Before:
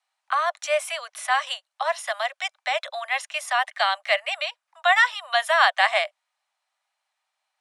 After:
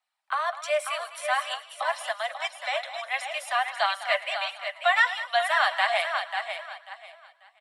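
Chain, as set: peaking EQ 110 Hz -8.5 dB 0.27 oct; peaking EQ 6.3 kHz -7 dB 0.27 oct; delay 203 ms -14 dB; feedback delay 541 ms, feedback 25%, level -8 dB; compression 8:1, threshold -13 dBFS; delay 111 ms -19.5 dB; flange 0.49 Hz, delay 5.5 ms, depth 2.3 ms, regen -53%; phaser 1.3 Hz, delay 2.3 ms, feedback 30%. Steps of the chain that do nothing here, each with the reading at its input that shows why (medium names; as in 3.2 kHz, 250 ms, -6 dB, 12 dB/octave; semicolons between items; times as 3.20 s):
peaking EQ 110 Hz: input has nothing below 480 Hz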